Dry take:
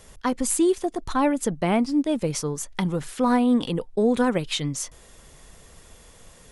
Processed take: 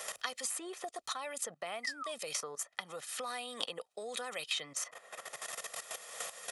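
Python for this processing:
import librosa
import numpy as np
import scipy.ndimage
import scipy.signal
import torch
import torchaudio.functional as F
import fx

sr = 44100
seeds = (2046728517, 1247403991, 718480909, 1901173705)

y = fx.spec_paint(x, sr, seeds[0], shape='fall', start_s=1.83, length_s=0.29, low_hz=1000.0, high_hz=2100.0, level_db=-36.0)
y = fx.level_steps(y, sr, step_db=16)
y = scipy.signal.sosfilt(scipy.signal.butter(2, 730.0, 'highpass', fs=sr, output='sos'), y)
y = y + 0.52 * np.pad(y, (int(1.6 * sr / 1000.0), 0))[:len(y)]
y = fx.band_squash(y, sr, depth_pct=100)
y = F.gain(torch.from_numpy(y), -2.0).numpy()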